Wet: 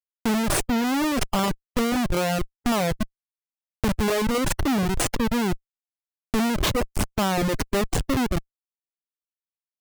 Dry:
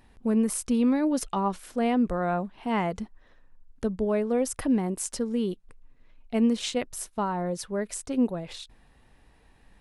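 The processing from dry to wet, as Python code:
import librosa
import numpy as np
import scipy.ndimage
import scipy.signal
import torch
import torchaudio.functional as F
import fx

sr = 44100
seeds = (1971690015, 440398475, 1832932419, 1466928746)

y = fx.schmitt(x, sr, flips_db=-29.0)
y = fx.dereverb_blind(y, sr, rt60_s=1.0)
y = y * 10.0 ** (8.0 / 20.0)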